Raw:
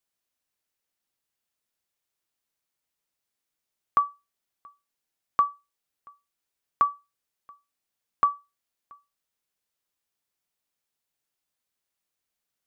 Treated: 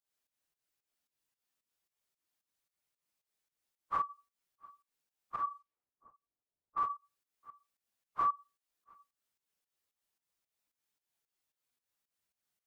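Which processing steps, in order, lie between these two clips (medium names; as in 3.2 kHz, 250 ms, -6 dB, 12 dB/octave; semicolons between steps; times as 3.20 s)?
phase randomisation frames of 100 ms; 5.42–6.83 s: level-controlled noise filter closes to 660 Hz, open at -28 dBFS; peak limiter -21.5 dBFS, peak gain reduction 9 dB; volume shaper 112 bpm, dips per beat 2, -14 dB, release 204 ms; trim -2 dB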